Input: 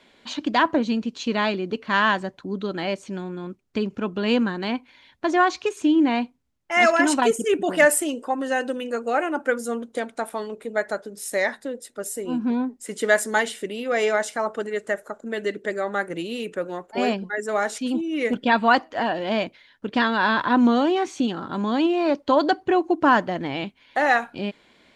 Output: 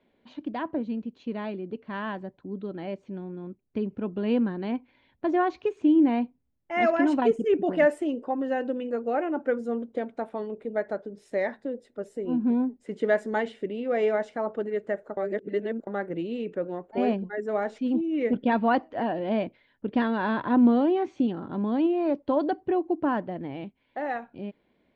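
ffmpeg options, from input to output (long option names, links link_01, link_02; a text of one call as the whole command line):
ffmpeg -i in.wav -filter_complex "[0:a]asplit=3[link_01][link_02][link_03];[link_01]atrim=end=15.172[link_04];[link_02]atrim=start=15.168:end=15.872,asetpts=PTS-STARTPTS,areverse[link_05];[link_03]atrim=start=15.868[link_06];[link_04][link_05]acrossfade=duration=0.004:curve1=hsin:curve2=hsin[link_07];[link_07][link_06]acrossfade=duration=0.004:curve1=hsin:curve2=hsin,lowpass=1700,equalizer=frequency=1300:width_type=o:width=1.5:gain=-9.5,dynaudnorm=framelen=880:gausssize=9:maxgain=8dB,volume=-7dB" out.wav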